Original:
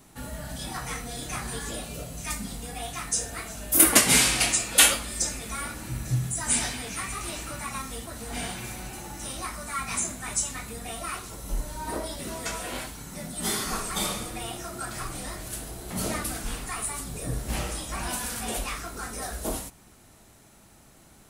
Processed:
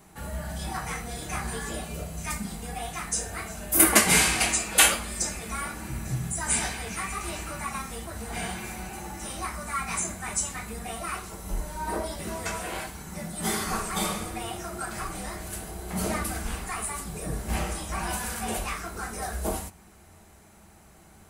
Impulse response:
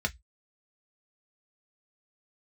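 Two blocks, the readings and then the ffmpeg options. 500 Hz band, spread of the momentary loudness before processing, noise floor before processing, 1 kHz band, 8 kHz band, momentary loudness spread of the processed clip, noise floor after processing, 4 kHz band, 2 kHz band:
+1.5 dB, 17 LU, -54 dBFS, +2.5 dB, -1.5 dB, 16 LU, -53 dBFS, -2.5 dB, +1.5 dB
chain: -filter_complex "[0:a]asplit=2[s0][s1];[1:a]atrim=start_sample=2205,asetrate=52920,aresample=44100[s2];[s1][s2]afir=irnorm=-1:irlink=0,volume=0.282[s3];[s0][s3]amix=inputs=2:normalize=0"

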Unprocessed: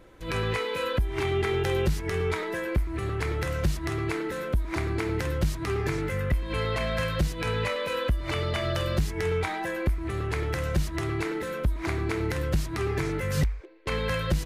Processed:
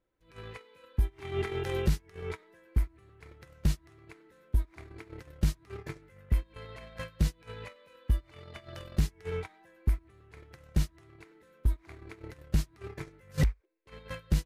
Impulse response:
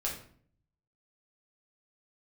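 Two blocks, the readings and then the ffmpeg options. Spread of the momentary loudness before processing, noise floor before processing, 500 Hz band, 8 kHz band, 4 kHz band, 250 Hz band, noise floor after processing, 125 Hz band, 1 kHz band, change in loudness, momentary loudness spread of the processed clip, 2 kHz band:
3 LU, -35 dBFS, -12.5 dB, -7.0 dB, -12.0 dB, -8.0 dB, -63 dBFS, -5.0 dB, -15.0 dB, -5.5 dB, 17 LU, -14.5 dB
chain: -af "agate=range=0.0398:threshold=0.0631:ratio=16:detection=peak"

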